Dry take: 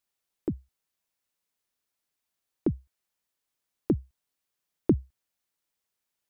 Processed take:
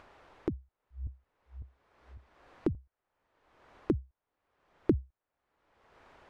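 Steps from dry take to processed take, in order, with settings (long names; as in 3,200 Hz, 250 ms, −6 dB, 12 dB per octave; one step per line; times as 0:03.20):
0:00.52–0:02.75: feedback delay that plays each chunk backwards 276 ms, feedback 41%, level −3 dB
low-pass filter 1,200 Hz 12 dB per octave
parametric band 180 Hz −8 dB 1.4 octaves
upward compression, threshold −29 dBFS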